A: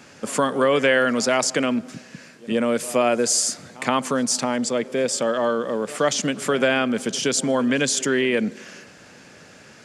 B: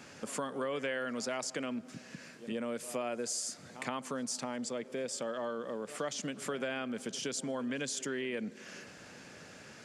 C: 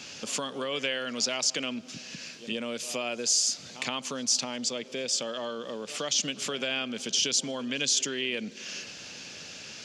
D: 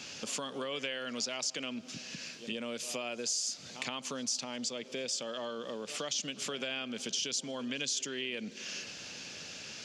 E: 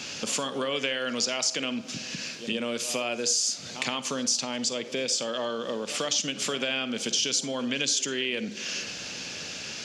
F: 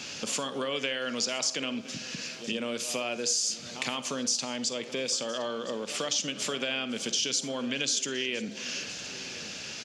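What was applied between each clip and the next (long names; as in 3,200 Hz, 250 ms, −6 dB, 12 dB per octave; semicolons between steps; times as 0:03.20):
downward compressor 2 to 1, threshold −38 dBFS, peak gain reduction 13 dB; level −5 dB
flat-topped bell 4,100 Hz +13 dB; level +2 dB
downward compressor 2 to 1, threshold −34 dBFS, peak gain reduction 7.5 dB; level −2 dB
convolution reverb RT60 0.35 s, pre-delay 37 ms, DRR 12.5 dB; level +8 dB
single-tap delay 1,016 ms −18 dB; level −2.5 dB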